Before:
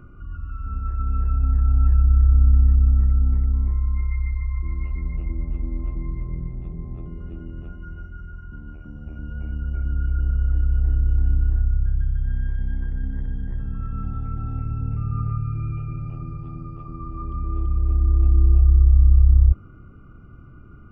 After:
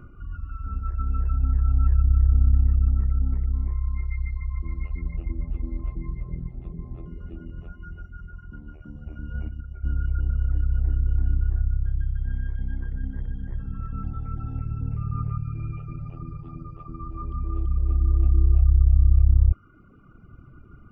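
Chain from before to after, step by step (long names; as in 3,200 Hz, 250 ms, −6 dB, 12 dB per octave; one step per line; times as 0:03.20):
0:09.34–0:09.84: compressor whose output falls as the input rises −29 dBFS, ratio −1
reverb reduction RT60 1.1 s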